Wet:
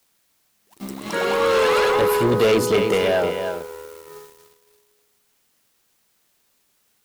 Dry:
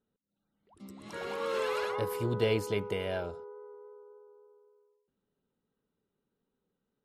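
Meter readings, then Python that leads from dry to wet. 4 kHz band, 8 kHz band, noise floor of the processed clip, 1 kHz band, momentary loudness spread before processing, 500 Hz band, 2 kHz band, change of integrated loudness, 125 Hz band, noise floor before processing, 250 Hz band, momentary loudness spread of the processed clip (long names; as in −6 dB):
+14.5 dB, +17.5 dB, −66 dBFS, +15.5 dB, 21 LU, +14.5 dB, +15.0 dB, +14.0 dB, +7.0 dB, −85 dBFS, +13.5 dB, 18 LU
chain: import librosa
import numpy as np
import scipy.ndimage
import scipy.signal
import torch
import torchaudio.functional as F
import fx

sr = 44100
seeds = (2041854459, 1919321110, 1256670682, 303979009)

p1 = scipy.signal.sosfilt(scipy.signal.butter(2, 170.0, 'highpass', fs=sr, output='sos'), x)
p2 = p1 + fx.echo_single(p1, sr, ms=314, db=-10.0, dry=0)
p3 = fx.dmg_noise_colour(p2, sr, seeds[0], colour='white', level_db=-66.0)
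p4 = fx.leveller(p3, sr, passes=3)
y = p4 * 10.0 ** (6.0 / 20.0)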